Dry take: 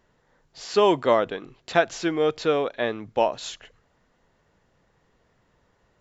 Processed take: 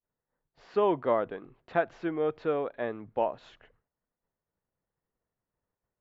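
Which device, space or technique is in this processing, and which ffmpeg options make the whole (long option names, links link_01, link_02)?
hearing-loss simulation: -af "lowpass=1700,agate=range=-33dB:threshold=-54dB:ratio=3:detection=peak,volume=-6.5dB"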